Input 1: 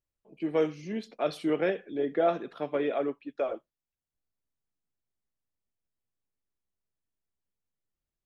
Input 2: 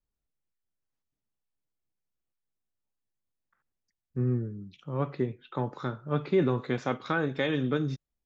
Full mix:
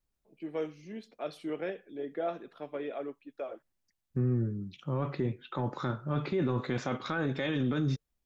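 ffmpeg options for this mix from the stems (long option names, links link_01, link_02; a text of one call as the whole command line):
ffmpeg -i stem1.wav -i stem2.wav -filter_complex "[0:a]volume=-13.5dB[link_01];[1:a]bandreject=frequency=450:width=15,volume=-1.5dB[link_02];[link_01][link_02]amix=inputs=2:normalize=0,acontrast=29,alimiter=limit=-22.5dB:level=0:latency=1:release=10" out.wav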